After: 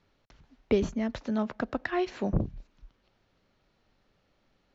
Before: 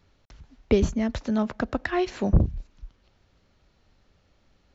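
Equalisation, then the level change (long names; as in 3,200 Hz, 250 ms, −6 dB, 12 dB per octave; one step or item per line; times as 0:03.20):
high-frequency loss of the air 74 metres
parametric band 69 Hz −9 dB 0.61 octaves
low-shelf EQ 120 Hz −6 dB
−3.0 dB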